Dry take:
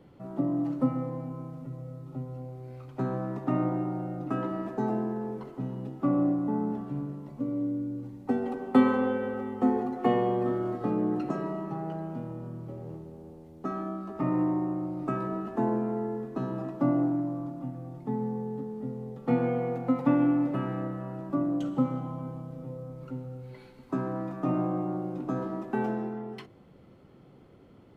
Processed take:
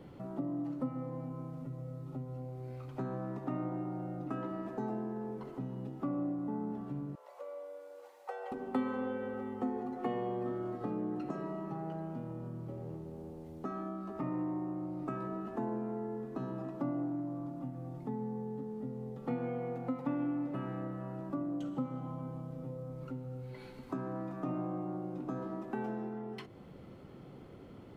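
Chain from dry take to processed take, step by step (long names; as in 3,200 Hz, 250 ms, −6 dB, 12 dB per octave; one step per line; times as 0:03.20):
0:07.15–0:08.52: elliptic high-pass filter 510 Hz, stop band 50 dB
downward compressor 2 to 1, threshold −48 dBFS, peak gain reduction 17.5 dB
level +3.5 dB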